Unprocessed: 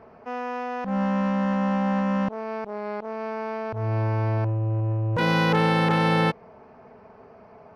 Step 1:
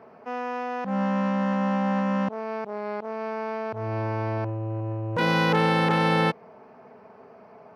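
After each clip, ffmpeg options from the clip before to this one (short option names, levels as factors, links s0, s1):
-af "highpass=150"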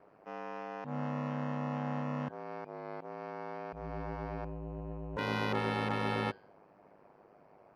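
-af "bandreject=f=142.6:t=h:w=4,bandreject=f=285.2:t=h:w=4,bandreject=f=427.8:t=h:w=4,bandreject=f=570.4:t=h:w=4,bandreject=f=713:t=h:w=4,bandreject=f=855.6:t=h:w=4,bandreject=f=998.2:t=h:w=4,bandreject=f=1140.8:t=h:w=4,bandreject=f=1283.4:t=h:w=4,bandreject=f=1426:t=h:w=4,bandreject=f=1568.6:t=h:w=4,bandreject=f=1711.2:t=h:w=4,bandreject=f=1853.8:t=h:w=4,bandreject=f=1996.4:t=h:w=4,bandreject=f=2139:t=h:w=4,bandreject=f=2281.6:t=h:w=4,bandreject=f=2424.2:t=h:w=4,bandreject=f=2566.8:t=h:w=4,bandreject=f=2709.4:t=h:w=4,bandreject=f=2852:t=h:w=4,bandreject=f=2994.6:t=h:w=4,bandreject=f=3137.2:t=h:w=4,bandreject=f=3279.8:t=h:w=4,bandreject=f=3422.4:t=h:w=4,bandreject=f=3565:t=h:w=4,bandreject=f=3707.6:t=h:w=4,bandreject=f=3850.2:t=h:w=4,bandreject=f=3992.8:t=h:w=4,bandreject=f=4135.4:t=h:w=4,bandreject=f=4278:t=h:w=4,bandreject=f=4420.6:t=h:w=4,bandreject=f=4563.2:t=h:w=4,bandreject=f=4705.8:t=h:w=4,bandreject=f=4848.4:t=h:w=4,aeval=exprs='val(0)*sin(2*PI*51*n/s)':c=same,volume=0.376"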